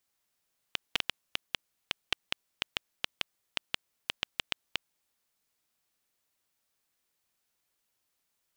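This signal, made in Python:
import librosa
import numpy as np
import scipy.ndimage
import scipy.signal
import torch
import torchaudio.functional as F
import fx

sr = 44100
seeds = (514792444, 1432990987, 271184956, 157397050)

y = fx.geiger_clicks(sr, seeds[0], length_s=4.66, per_s=4.8, level_db=-9.5)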